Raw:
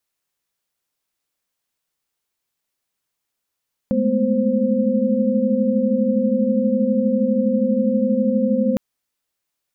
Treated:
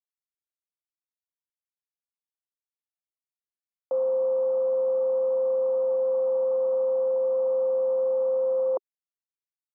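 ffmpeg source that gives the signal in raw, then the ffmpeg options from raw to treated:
-f lavfi -i "aevalsrc='0.0891*(sin(2*PI*207.65*t)+sin(2*PI*220*t)+sin(2*PI*246.94*t)+sin(2*PI*523.25*t))':d=4.86:s=44100"
-af "acrusher=bits=4:mix=0:aa=0.5,asuperpass=centerf=670:order=12:qfactor=0.87"

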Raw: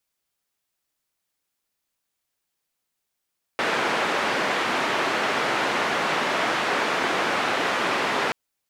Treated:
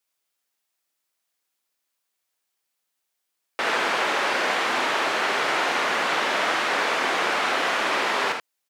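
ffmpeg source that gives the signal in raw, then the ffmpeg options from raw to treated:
-f lavfi -i "anoisesrc=c=white:d=4.73:r=44100:seed=1,highpass=f=250,lowpass=f=1800,volume=-8.1dB"
-filter_complex "[0:a]highpass=f=420:p=1,asplit=2[a][b];[b]aecho=0:1:52|79:0.355|0.473[c];[a][c]amix=inputs=2:normalize=0"

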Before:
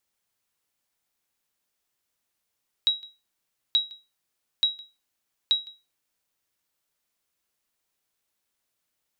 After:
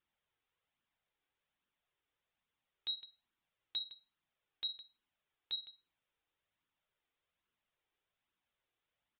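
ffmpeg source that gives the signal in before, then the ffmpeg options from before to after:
-f lavfi -i "aevalsrc='0.211*(sin(2*PI*3850*mod(t,0.88))*exp(-6.91*mod(t,0.88)/0.26)+0.0668*sin(2*PI*3850*max(mod(t,0.88)-0.16,0))*exp(-6.91*max(mod(t,0.88)-0.16,0)/0.26))':d=3.52:s=44100"
-af "alimiter=limit=-23dB:level=0:latency=1:release=18,flanger=delay=0.6:depth=2.1:regen=-24:speed=1.2:shape=triangular,aresample=8000,aresample=44100"

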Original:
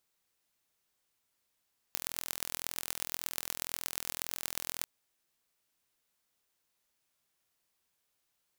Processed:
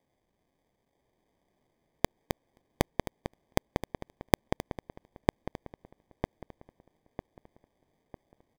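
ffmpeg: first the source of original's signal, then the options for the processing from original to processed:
-f lavfi -i "aevalsrc='0.562*eq(mod(n,1053),0)*(0.5+0.5*eq(mod(n,5265),0))':d=2.89:s=44100"
-filter_complex "[0:a]highshelf=f=9.8k:g=4.5,acrusher=samples=32:mix=1:aa=0.000001,asplit=2[a][b];[b]adelay=951,lowpass=f=2.5k:p=1,volume=-3dB,asplit=2[c][d];[d]adelay=951,lowpass=f=2.5k:p=1,volume=0.42,asplit=2[e][f];[f]adelay=951,lowpass=f=2.5k:p=1,volume=0.42,asplit=2[g][h];[h]adelay=951,lowpass=f=2.5k:p=1,volume=0.42,asplit=2[i][j];[j]adelay=951,lowpass=f=2.5k:p=1,volume=0.42[k];[c][e][g][i][k]amix=inputs=5:normalize=0[l];[a][l]amix=inputs=2:normalize=0"

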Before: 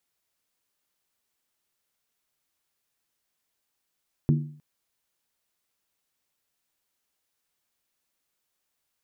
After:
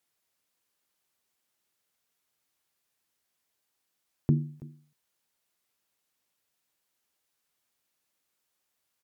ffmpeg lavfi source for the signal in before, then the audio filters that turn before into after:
-f lavfi -i "aevalsrc='0.168*pow(10,-3*t/0.52)*sin(2*PI*149*t)+0.0841*pow(10,-3*t/0.412)*sin(2*PI*237.5*t)+0.0422*pow(10,-3*t/0.356)*sin(2*PI*318.3*t)+0.0211*pow(10,-3*t/0.343)*sin(2*PI*342.1*t)+0.0106*pow(10,-3*t/0.319)*sin(2*PI*395.3*t)':d=0.31:s=44100"
-af "highpass=f=67:p=1,aecho=1:1:329:0.0944" -ar 48000 -c:a aac -b:a 192k

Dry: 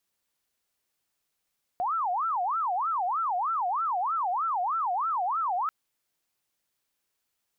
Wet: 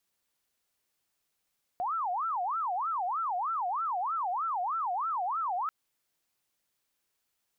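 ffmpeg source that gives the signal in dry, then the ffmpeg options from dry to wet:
-f lavfi -i "aevalsrc='0.0562*sin(2*PI*(1028.5*t-321.5/(2*PI*3.2)*sin(2*PI*3.2*t)))':d=3.89:s=44100"
-af "alimiter=level_in=4.5dB:limit=-24dB:level=0:latency=1:release=142,volume=-4.5dB"

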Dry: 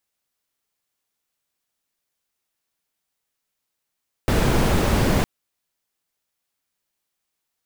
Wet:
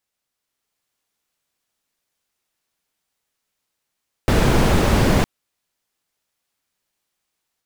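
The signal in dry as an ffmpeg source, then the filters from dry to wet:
-f lavfi -i "anoisesrc=c=brown:a=0.589:d=0.96:r=44100:seed=1"
-af "highshelf=f=12k:g=-6,dynaudnorm=f=400:g=3:m=4dB"

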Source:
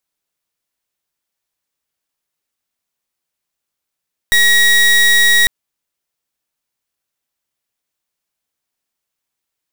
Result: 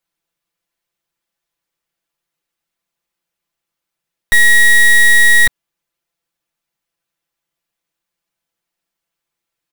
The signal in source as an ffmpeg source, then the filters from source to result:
-f lavfi -i "aevalsrc='0.316*(2*lt(mod(1900*t,1),0.29)-1)':d=1.15:s=44100"
-af "bass=f=250:g=1,treble=f=4k:g=-5,aecho=1:1:5.9:0.86"

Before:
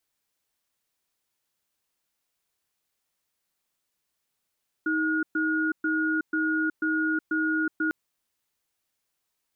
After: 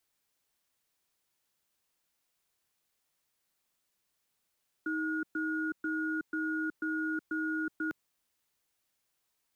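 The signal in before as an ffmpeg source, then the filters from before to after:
-f lavfi -i "aevalsrc='0.0531*(sin(2*PI*315*t)+sin(2*PI*1440*t))*clip(min(mod(t,0.49),0.37-mod(t,0.49))/0.005,0,1)':d=3.05:s=44100"
-filter_complex "[0:a]acrossover=split=190[a][b];[a]acrusher=bits=5:mode=log:mix=0:aa=0.000001[c];[b]alimiter=level_in=4.5dB:limit=-24dB:level=0:latency=1:release=11,volume=-4.5dB[d];[c][d]amix=inputs=2:normalize=0"

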